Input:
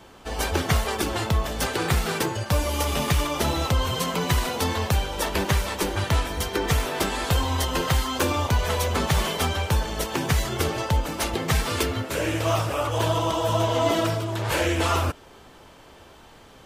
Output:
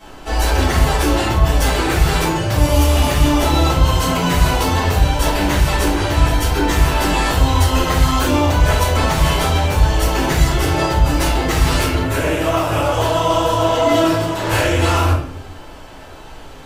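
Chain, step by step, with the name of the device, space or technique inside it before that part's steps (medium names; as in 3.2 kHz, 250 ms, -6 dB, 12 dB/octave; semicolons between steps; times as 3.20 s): soft clipper into limiter (saturation -13 dBFS, distortion -23 dB; peak limiter -19 dBFS, peak gain reduction 5 dB); 12.02–12.72 s: peaking EQ 5.2 kHz -5 dB 1.4 oct; simulated room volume 71 m³, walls mixed, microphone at 2.3 m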